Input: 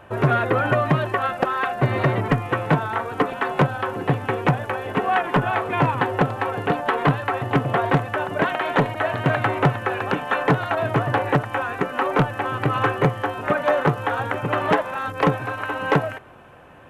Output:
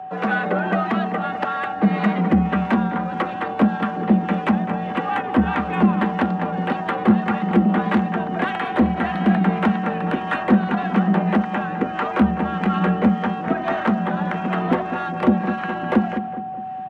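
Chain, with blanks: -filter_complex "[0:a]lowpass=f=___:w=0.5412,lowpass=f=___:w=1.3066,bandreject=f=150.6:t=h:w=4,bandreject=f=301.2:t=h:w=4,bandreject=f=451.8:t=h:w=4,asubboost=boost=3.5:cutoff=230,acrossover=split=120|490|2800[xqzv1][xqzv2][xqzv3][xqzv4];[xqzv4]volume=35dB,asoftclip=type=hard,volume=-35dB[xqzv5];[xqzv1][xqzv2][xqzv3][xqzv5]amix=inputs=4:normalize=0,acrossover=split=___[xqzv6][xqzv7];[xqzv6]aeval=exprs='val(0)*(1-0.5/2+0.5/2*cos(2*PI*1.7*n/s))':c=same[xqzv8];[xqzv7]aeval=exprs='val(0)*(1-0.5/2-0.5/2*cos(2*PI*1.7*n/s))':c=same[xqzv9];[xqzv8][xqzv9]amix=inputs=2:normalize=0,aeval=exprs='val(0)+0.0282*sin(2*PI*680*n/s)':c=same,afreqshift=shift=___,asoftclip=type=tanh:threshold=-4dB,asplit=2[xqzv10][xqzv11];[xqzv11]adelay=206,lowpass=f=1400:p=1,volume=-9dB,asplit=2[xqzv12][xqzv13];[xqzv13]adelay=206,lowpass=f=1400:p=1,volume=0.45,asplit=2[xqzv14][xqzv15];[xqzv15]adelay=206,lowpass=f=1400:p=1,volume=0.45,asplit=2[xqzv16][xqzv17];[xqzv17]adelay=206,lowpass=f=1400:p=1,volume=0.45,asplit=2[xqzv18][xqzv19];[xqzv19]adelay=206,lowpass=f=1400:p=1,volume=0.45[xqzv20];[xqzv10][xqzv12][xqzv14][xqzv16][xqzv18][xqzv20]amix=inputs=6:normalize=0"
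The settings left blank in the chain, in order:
6000, 6000, 660, 72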